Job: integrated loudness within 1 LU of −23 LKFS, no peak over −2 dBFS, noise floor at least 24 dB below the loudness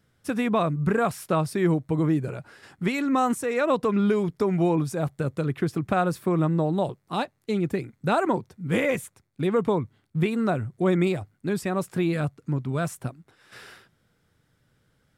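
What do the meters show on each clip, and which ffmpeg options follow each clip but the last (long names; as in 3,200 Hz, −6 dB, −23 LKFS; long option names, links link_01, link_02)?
integrated loudness −25.5 LKFS; sample peak −12.5 dBFS; target loudness −23.0 LKFS
→ -af "volume=2.5dB"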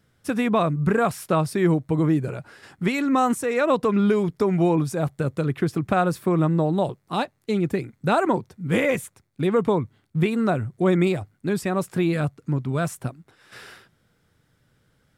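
integrated loudness −23.0 LKFS; sample peak −10.0 dBFS; background noise floor −67 dBFS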